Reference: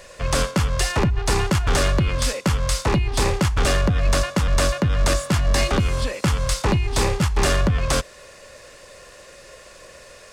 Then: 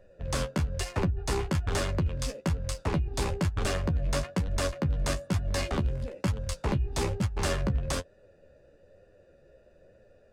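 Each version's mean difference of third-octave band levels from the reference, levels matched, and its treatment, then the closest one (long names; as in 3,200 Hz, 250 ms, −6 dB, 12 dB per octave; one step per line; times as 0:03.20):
6.5 dB: adaptive Wiener filter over 41 samples
flanger 1.1 Hz, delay 9.1 ms, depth 6.2 ms, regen +26%
level −4 dB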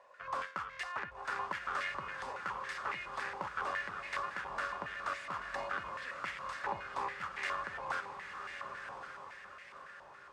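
9.5 dB: on a send: feedback delay with all-pass diffusion 1,071 ms, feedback 42%, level −5.5 dB
on the sum: band-pass on a step sequencer 7.2 Hz 920–2,000 Hz
level −5.5 dB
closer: first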